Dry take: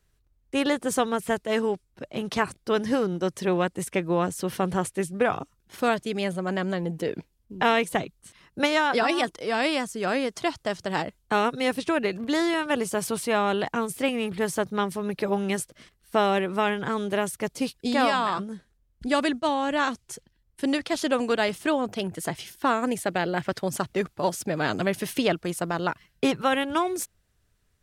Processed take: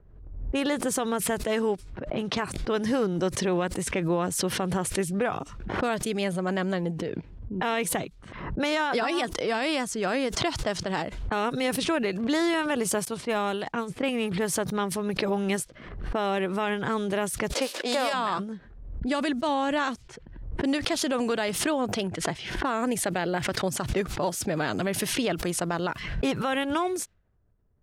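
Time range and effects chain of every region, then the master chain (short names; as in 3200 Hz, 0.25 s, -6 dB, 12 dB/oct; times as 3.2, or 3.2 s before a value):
6.98–7.54 bell 100 Hz +7 dB 2.1 oct + compressor 3:1, threshold -28 dBFS
13.05–14.03 de-esser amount 90% + high shelf 5700 Hz +10.5 dB + upward expander 2.5:1, over -46 dBFS
17.52–18.12 spectral whitening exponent 0.6 + HPF 300 Hz 24 dB/oct + bell 560 Hz +11 dB 0.36 oct
whole clip: low-pass opened by the level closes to 690 Hz, open at -24 dBFS; limiter -17.5 dBFS; backwards sustainer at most 57 dB/s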